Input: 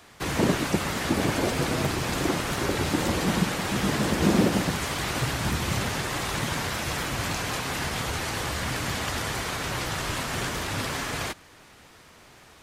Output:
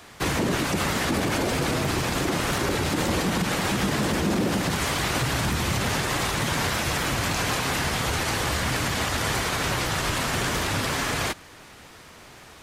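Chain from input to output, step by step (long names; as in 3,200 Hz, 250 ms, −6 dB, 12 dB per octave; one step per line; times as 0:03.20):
brickwall limiter −20.5 dBFS, peak gain reduction 11 dB
level +5 dB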